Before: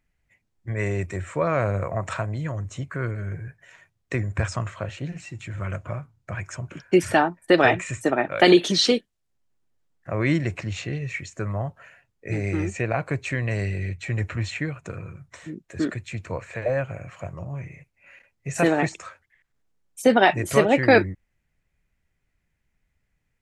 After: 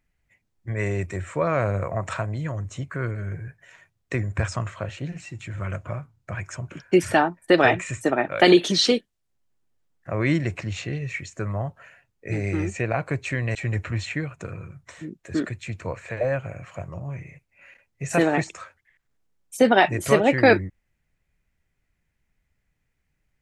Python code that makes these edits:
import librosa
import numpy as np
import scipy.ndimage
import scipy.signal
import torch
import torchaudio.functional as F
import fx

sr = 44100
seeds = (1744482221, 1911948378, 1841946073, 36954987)

y = fx.edit(x, sr, fx.cut(start_s=13.55, length_s=0.45), tone=tone)